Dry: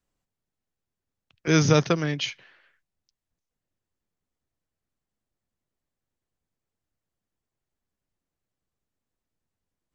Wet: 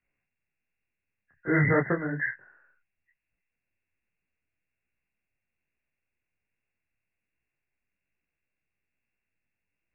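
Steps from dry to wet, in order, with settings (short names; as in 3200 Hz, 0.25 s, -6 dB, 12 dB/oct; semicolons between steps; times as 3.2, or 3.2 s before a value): nonlinear frequency compression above 1400 Hz 4:1; detuned doubles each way 42 cents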